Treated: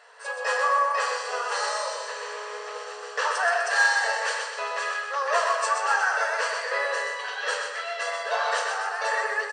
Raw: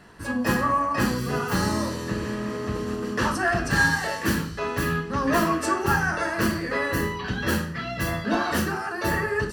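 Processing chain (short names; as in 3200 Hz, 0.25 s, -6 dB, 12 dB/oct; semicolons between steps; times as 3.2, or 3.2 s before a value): brick-wall FIR band-pass 430–9100 Hz; feedback echo 0.126 s, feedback 47%, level -5 dB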